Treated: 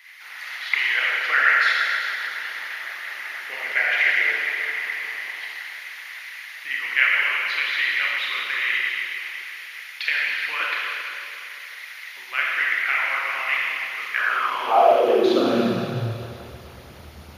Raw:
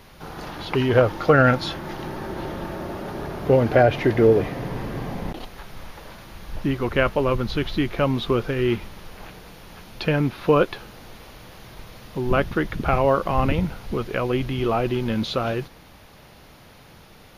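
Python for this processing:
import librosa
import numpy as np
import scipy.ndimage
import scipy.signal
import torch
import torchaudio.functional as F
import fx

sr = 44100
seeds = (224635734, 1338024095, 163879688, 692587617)

y = fx.rev_schroeder(x, sr, rt60_s=2.8, comb_ms=26, drr_db=-6.0)
y = fx.filter_sweep_highpass(y, sr, from_hz=2000.0, to_hz=72.0, start_s=14.11, end_s=16.41, q=7.0)
y = fx.hpss(y, sr, part='harmonic', gain_db=-8)
y = y * librosa.db_to_amplitude(-1.0)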